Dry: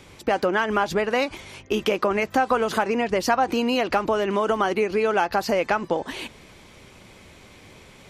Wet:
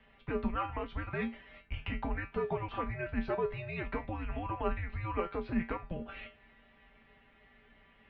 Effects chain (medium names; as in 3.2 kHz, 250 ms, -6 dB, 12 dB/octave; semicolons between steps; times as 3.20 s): feedback comb 190 Hz, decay 0.24 s, harmonics all, mix 90%; mistuned SSB -340 Hz 300–3400 Hz; trim -1.5 dB